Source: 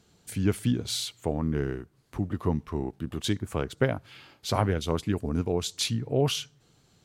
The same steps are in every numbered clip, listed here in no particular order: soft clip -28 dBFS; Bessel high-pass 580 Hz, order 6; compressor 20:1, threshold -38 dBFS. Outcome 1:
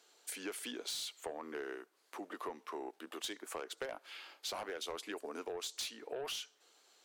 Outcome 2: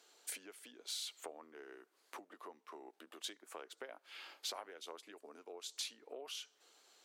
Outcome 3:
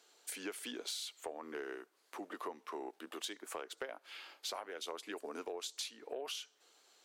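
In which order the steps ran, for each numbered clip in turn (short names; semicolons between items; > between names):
Bessel high-pass > soft clip > compressor; compressor > Bessel high-pass > soft clip; Bessel high-pass > compressor > soft clip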